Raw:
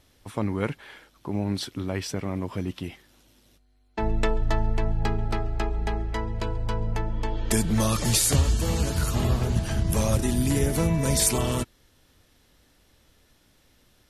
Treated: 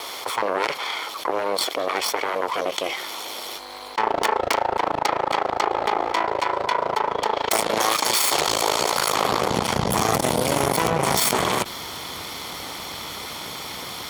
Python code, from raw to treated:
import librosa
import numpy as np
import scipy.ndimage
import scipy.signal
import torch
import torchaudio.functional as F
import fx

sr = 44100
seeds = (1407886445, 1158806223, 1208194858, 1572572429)

y = fx.lower_of_two(x, sr, delay_ms=0.91)
y = fx.graphic_eq(y, sr, hz=(125, 250, 500, 1000, 4000, 8000), db=(-5, -8, 7, 4, 4, -3))
y = (np.mod(10.0 ** (13.0 / 20.0) * y + 1.0, 2.0) - 1.0) / 10.0 ** (13.0 / 20.0)
y = fx.cheby_harmonics(y, sr, harmonics=(4, 7), levels_db=(-8, -28), full_scale_db=-13.0)
y = fx.filter_sweep_highpass(y, sr, from_hz=420.0, to_hz=170.0, start_s=9.03, end_s=9.78, q=1.0)
y = fx.env_flatten(y, sr, amount_pct=70)